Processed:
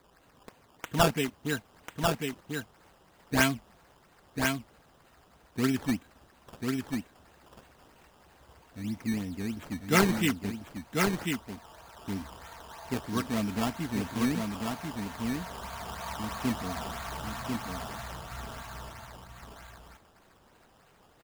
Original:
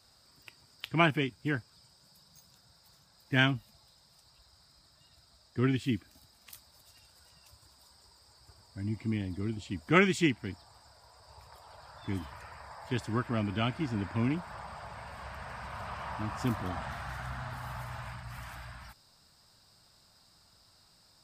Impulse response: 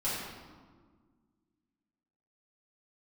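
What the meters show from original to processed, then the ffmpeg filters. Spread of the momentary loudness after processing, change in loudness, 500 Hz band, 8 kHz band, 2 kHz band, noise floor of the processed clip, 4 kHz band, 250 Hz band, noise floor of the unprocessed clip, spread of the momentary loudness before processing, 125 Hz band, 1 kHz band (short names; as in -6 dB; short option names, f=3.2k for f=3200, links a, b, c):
20 LU, +1.0 dB, +2.5 dB, +12.0 dB, +0.5 dB, -62 dBFS, +2.5 dB, +3.0 dB, -64 dBFS, 20 LU, -1.0 dB, +3.0 dB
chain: -af "aecho=1:1:4.4:0.52,acrusher=samples=15:mix=1:aa=0.000001:lfo=1:lforange=15:lforate=3.1,aecho=1:1:1043:0.631"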